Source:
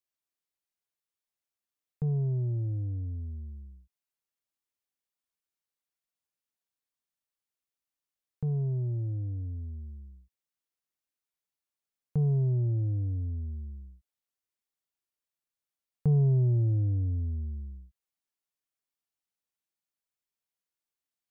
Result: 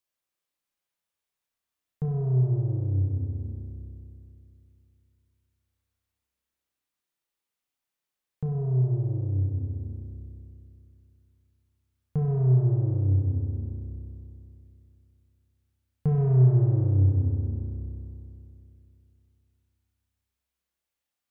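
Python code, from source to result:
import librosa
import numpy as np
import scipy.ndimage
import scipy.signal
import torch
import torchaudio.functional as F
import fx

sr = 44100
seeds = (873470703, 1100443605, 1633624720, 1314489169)

p1 = 10.0 ** (-31.0 / 20.0) * np.tanh(x / 10.0 ** (-31.0 / 20.0))
p2 = x + (p1 * librosa.db_to_amplitude(-7.0))
y = fx.rev_spring(p2, sr, rt60_s=2.8, pass_ms=(31,), chirp_ms=20, drr_db=0.0)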